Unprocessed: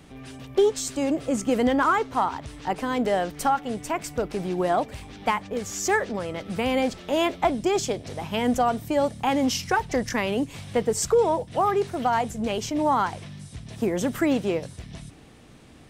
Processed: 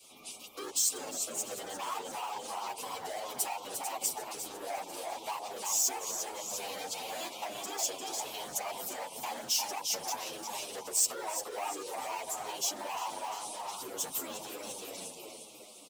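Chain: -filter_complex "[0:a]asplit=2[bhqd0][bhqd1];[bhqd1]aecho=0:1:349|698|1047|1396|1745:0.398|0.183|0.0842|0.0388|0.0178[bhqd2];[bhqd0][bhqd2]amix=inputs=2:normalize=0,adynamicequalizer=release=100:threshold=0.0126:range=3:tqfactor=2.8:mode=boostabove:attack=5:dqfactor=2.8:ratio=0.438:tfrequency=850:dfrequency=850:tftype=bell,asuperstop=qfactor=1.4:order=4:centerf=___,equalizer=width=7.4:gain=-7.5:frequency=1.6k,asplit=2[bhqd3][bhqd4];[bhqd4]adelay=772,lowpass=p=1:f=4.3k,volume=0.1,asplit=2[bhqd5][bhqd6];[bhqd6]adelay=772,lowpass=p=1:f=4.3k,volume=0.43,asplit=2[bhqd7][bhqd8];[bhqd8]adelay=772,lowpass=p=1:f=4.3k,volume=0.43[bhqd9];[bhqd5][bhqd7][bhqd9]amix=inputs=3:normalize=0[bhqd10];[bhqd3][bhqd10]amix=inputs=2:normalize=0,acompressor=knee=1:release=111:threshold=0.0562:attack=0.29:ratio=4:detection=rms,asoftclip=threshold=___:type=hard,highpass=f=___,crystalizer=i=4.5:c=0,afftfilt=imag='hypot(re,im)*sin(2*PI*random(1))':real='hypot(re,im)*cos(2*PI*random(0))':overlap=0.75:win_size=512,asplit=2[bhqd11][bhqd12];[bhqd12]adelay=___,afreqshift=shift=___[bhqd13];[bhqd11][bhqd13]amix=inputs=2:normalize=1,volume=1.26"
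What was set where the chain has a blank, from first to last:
1700, 0.0422, 530, 8.7, -0.99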